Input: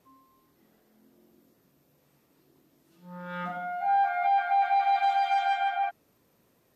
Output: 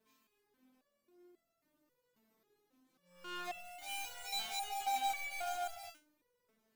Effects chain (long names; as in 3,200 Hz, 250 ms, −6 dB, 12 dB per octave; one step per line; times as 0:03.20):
gap after every zero crossing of 0.24 ms
step-sequenced resonator 3.7 Hz 220–670 Hz
level +5 dB